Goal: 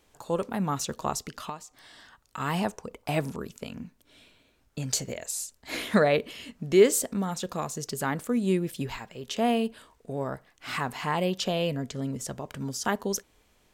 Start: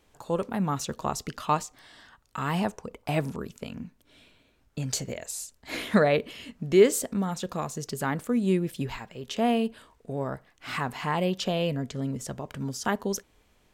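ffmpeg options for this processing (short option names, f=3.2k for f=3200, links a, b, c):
-filter_complex "[0:a]bass=f=250:g=-2,treble=f=4k:g=3,asettb=1/sr,asplit=3[a][b][c];[a]atrim=end=1.184[d];[b]atrim=start=1.18:end=2.4,asetpts=PTS-STARTPTS,afade=t=in:d=0.004:c=qsin,afade=t=out:st=1.216:d=0.004:c=qsin,acompressor=threshold=-34dB:ratio=10[e];[c]atrim=start=2.396[f];[d][e]acrossfade=d=0.004:c1=hsin:c2=qsin[g];[g][f]acrossfade=d=0.004:c1=qsin:c2=hsin"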